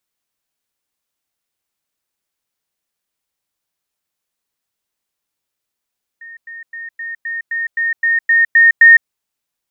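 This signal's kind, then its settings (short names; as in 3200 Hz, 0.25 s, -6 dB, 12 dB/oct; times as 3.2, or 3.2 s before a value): level ladder 1840 Hz -32 dBFS, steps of 3 dB, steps 11, 0.16 s 0.10 s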